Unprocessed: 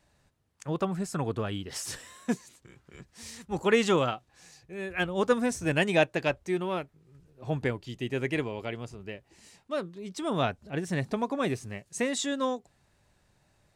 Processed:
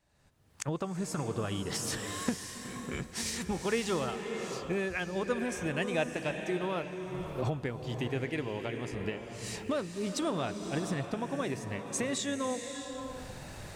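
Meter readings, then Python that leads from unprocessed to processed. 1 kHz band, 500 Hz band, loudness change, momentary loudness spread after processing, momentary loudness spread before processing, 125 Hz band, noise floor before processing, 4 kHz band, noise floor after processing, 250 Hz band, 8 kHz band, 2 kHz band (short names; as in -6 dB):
-4.5 dB, -4.5 dB, -4.5 dB, 7 LU, 15 LU, -2.0 dB, -69 dBFS, -2.0 dB, -48 dBFS, -3.0 dB, +1.5 dB, -4.5 dB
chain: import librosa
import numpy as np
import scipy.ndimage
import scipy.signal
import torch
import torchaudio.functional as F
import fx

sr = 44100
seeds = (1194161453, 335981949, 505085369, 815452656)

y = fx.recorder_agc(x, sr, target_db=-17.0, rise_db_per_s=37.0, max_gain_db=30)
y = fx.rev_bloom(y, sr, seeds[0], attack_ms=610, drr_db=5.5)
y = y * librosa.db_to_amplitude(-8.0)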